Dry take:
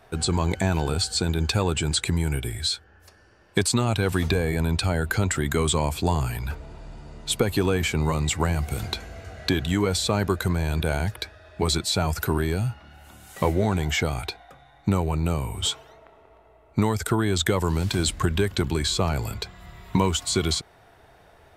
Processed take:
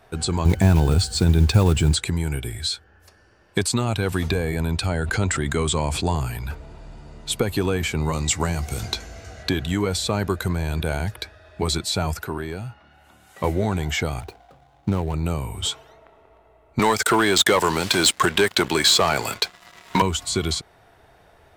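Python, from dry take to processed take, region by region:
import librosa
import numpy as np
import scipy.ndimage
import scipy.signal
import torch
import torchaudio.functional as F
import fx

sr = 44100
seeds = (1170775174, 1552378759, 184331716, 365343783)

y = fx.chain(x, sr, fx.block_float(bits=5),
    fx.low_shelf(hz=270.0, db=10.5), at=(0.45, 1.97))
y = fx.chain(y, sr, fx.lowpass(hz=10000.0, slope=24),
    fx.sustainer(db_per_s=36.0), at=(4.87, 6.16))
y = fx.chain(y, sr, fx.peak_eq(hz=6000.0, db=8.5, octaves=0.92),
    fx.doubler(ms=17.0, db=-13.0), at=(8.13, 9.43))
y = fx.chain(y, sr, fx.lowpass(hz=1200.0, slope=6),
    fx.tilt_eq(slope=2.5), at=(12.17, 13.44))
y = fx.chain(y, sr, fx.median_filter(points=25),
    fx.highpass(hz=42.0, slope=12), at=(14.2, 15.14))
y = fx.chain(y, sr, fx.weighting(curve='A'),
    fx.leveller(passes=3), at=(16.79, 20.02))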